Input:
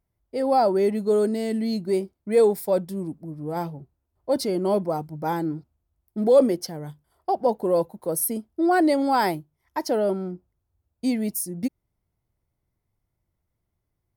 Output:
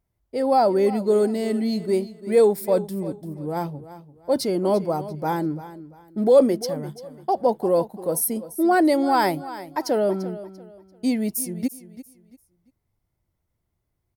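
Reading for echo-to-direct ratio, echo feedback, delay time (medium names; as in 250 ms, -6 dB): -14.5 dB, 29%, 342 ms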